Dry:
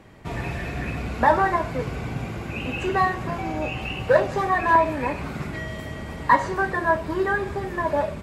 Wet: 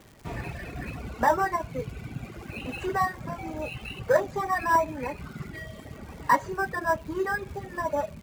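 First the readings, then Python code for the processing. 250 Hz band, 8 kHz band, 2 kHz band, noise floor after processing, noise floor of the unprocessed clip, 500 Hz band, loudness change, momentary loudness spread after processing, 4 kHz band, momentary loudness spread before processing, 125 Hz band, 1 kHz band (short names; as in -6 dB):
-6.5 dB, n/a, -5.5 dB, -46 dBFS, -35 dBFS, -5.0 dB, -5.0 dB, 15 LU, -6.5 dB, 12 LU, -7.5 dB, -5.0 dB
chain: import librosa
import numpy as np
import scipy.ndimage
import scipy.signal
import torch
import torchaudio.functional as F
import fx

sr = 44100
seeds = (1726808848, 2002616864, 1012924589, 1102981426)

p1 = fx.sample_hold(x, sr, seeds[0], rate_hz=6700.0, jitter_pct=0)
p2 = x + (p1 * librosa.db_to_amplitude(-11.0))
p3 = fx.dereverb_blind(p2, sr, rt60_s=1.8)
p4 = fx.dmg_crackle(p3, sr, seeds[1], per_s=290.0, level_db=-36.0)
y = p4 * librosa.db_to_amplitude(-6.0)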